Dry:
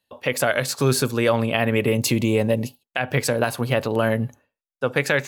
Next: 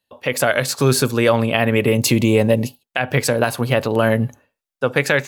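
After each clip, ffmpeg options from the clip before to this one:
-af "dynaudnorm=f=180:g=3:m=11.5dB,volume=-1dB"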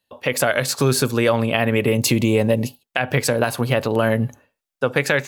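-af "acompressor=threshold=-21dB:ratio=1.5,volume=1.5dB"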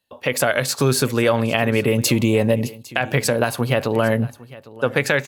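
-af "aecho=1:1:805:0.1"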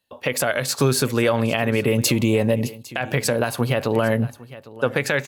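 -af "alimiter=limit=-7.5dB:level=0:latency=1:release=158"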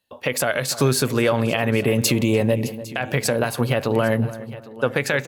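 -filter_complex "[0:a]asplit=2[a][b];[b]adelay=293,lowpass=f=1.3k:p=1,volume=-14dB,asplit=2[c][d];[d]adelay=293,lowpass=f=1.3k:p=1,volume=0.33,asplit=2[e][f];[f]adelay=293,lowpass=f=1.3k:p=1,volume=0.33[g];[a][c][e][g]amix=inputs=4:normalize=0"

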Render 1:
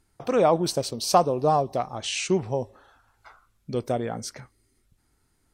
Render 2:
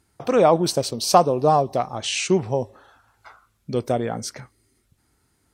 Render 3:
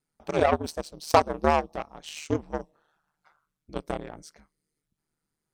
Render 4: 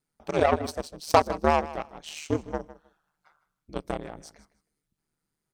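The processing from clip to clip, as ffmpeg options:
-af "highpass=57,volume=4dB"
-af "aeval=exprs='0.891*(cos(1*acos(clip(val(0)/0.891,-1,1)))-cos(1*PI/2))+0.1*(cos(7*acos(clip(val(0)/0.891,-1,1)))-cos(7*PI/2))':c=same,aeval=exprs='val(0)*sin(2*PI*76*n/s)':c=same,volume=-1dB"
-af "aecho=1:1:156|312:0.15|0.0269"

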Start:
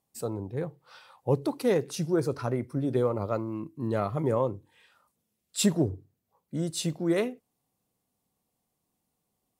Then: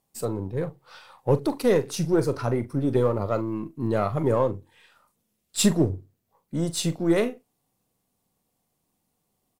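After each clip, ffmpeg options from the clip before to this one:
-filter_complex "[0:a]aeval=exprs='if(lt(val(0),0),0.708*val(0),val(0))':c=same,asplit=2[a][b];[b]adelay=42,volume=-12.5dB[c];[a][c]amix=inputs=2:normalize=0,volume=5.5dB"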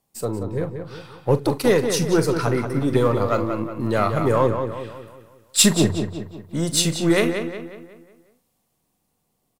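-filter_complex "[0:a]acrossover=split=650|1100[a][b][c];[c]dynaudnorm=f=300:g=11:m=7.5dB[d];[a][b][d]amix=inputs=3:normalize=0,asplit=2[e][f];[f]adelay=182,lowpass=f=4k:p=1,volume=-7dB,asplit=2[g][h];[h]adelay=182,lowpass=f=4k:p=1,volume=0.47,asplit=2[i][j];[j]adelay=182,lowpass=f=4k:p=1,volume=0.47,asplit=2[k][l];[l]adelay=182,lowpass=f=4k:p=1,volume=0.47,asplit=2[m][n];[n]adelay=182,lowpass=f=4k:p=1,volume=0.47,asplit=2[o][p];[p]adelay=182,lowpass=f=4k:p=1,volume=0.47[q];[e][g][i][k][m][o][q]amix=inputs=7:normalize=0,volume=2.5dB"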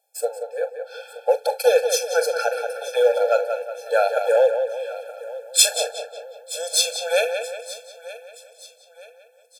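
-af "aecho=1:1:925|1850|2775:0.133|0.0547|0.0224,afftfilt=real='re*eq(mod(floor(b*sr/1024/450),2),1)':imag='im*eq(mod(floor(b*sr/1024/450),2),1)':win_size=1024:overlap=0.75,volume=5dB"

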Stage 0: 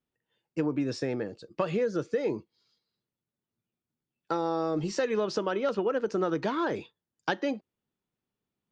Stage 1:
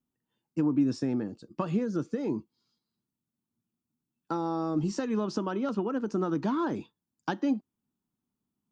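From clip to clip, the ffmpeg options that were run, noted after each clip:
-af "equalizer=f=250:t=o:w=1:g=9,equalizer=f=500:t=o:w=1:g=-10,equalizer=f=1k:t=o:w=1:g=3,equalizer=f=2k:t=o:w=1:g=-9,equalizer=f=4k:t=o:w=1:g=-5"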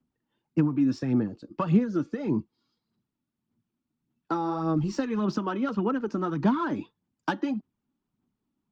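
-filter_complex "[0:a]acrossover=split=230|920[a][b][c];[b]acompressor=threshold=-37dB:ratio=6[d];[a][d][c]amix=inputs=3:normalize=0,aphaser=in_gain=1:out_gain=1:delay=3.6:decay=0.46:speed=1.7:type=sinusoidal,adynamicsmooth=sensitivity=3.5:basefreq=4.2k,volume=4.5dB"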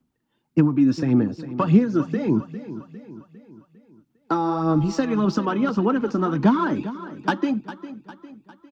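-af "aecho=1:1:403|806|1209|1612|2015:0.2|0.0978|0.0479|0.0235|0.0115,volume=6dB"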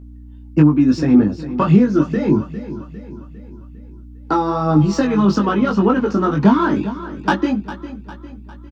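-filter_complex "[0:a]aeval=exprs='val(0)+0.00794*(sin(2*PI*60*n/s)+sin(2*PI*2*60*n/s)/2+sin(2*PI*3*60*n/s)/3+sin(2*PI*4*60*n/s)/4+sin(2*PI*5*60*n/s)/5)':c=same,asplit=2[a][b];[b]adelay=20,volume=-3dB[c];[a][c]amix=inputs=2:normalize=0,alimiter=level_in=5dB:limit=-1dB:release=50:level=0:latency=1,volume=-1dB"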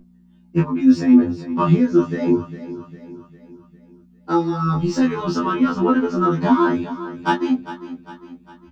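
-af "afftfilt=real='re*2*eq(mod(b,4),0)':imag='im*2*eq(mod(b,4),0)':win_size=2048:overlap=0.75"

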